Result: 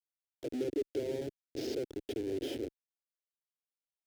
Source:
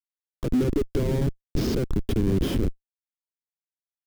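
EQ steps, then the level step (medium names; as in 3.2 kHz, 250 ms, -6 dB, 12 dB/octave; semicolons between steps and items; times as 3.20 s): high-pass 230 Hz 12 dB/octave; treble shelf 7.7 kHz -9 dB; static phaser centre 460 Hz, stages 4; -6.0 dB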